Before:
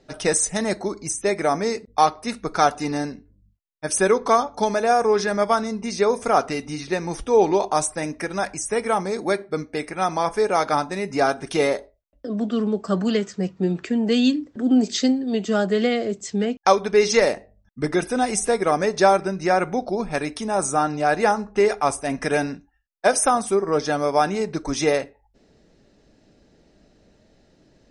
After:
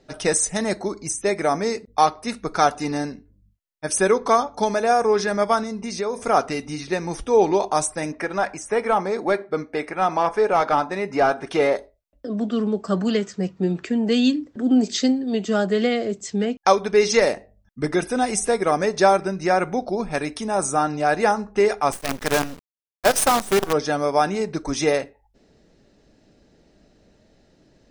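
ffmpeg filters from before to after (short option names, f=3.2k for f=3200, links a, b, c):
-filter_complex "[0:a]asettb=1/sr,asplit=3[a][b][c];[a]atrim=end=5.634[d];[b]atrim=start=5.63:end=6.27,asetpts=PTS-STARTPTS,afade=t=in:d=0.004:c=qsin,afade=t=out:st=0.636:d=0.004:c=qsin,acompressor=threshold=-26dB:ratio=2:attack=3.2:release=140:knee=1:detection=peak[e];[c]atrim=start=6.266[f];[d][e]acrossfade=d=0.004:c1=hsin:c2=qsin[g];[g][f]acrossfade=d=0.004:c1=qsin:c2=hsin,asettb=1/sr,asplit=3[h][i][j];[h]atrim=end=8.124[k];[i]atrim=start=8.12:end=11.76,asetpts=PTS-STARTPTS,afade=t=in:d=0.004:c=qsin,afade=t=out:st=3.636:d=0.004:c=qsin,asplit=2[l][m];[m]highpass=f=720:p=1,volume=12dB,asoftclip=type=tanh:threshold=-6dB[n];[l][n]amix=inputs=2:normalize=0,lowpass=f=1.3k:p=1,volume=-6dB[o];[j]atrim=start=11.756[p];[k][o]acrossfade=d=0.004:c1=hsin:c2=qsin[q];[q][p]acrossfade=d=0.004:c1=qsin:c2=hsin,asettb=1/sr,asplit=3[r][s][t];[r]atrim=end=21.924[u];[s]atrim=start=21.92:end=23.73,asetpts=PTS-STARTPTS,afade=t=in:d=0.004:c=qsin,afade=t=out:st=1.806:d=0.004:c=qsin,acrusher=bits=4:dc=4:mix=0:aa=0.000001[v];[t]atrim=start=23.726[w];[u][v]acrossfade=d=0.004:c1=hsin:c2=qsin[x];[x][w]acrossfade=d=0.004:c1=qsin:c2=hsin"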